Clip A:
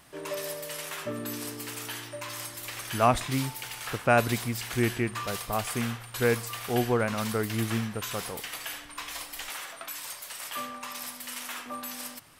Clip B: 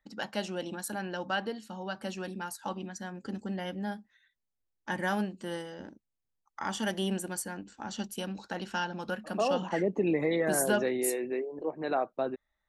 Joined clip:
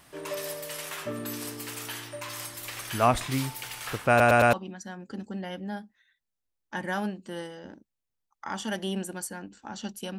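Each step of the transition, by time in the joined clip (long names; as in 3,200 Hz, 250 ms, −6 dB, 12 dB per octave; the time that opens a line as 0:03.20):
clip A
0:04.09: stutter in place 0.11 s, 4 plays
0:04.53: continue with clip B from 0:02.68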